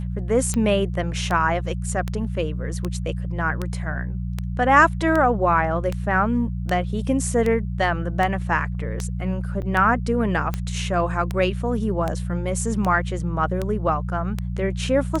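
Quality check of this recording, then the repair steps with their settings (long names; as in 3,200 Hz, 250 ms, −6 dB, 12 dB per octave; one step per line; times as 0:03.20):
mains hum 60 Hz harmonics 3 −27 dBFS
scratch tick 78 rpm −12 dBFS
0:09.62–0:09.63: drop-out 7.1 ms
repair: click removal
hum removal 60 Hz, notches 3
repair the gap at 0:09.62, 7.1 ms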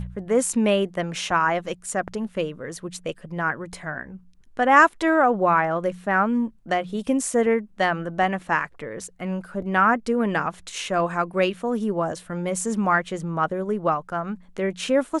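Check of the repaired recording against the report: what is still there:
none of them is left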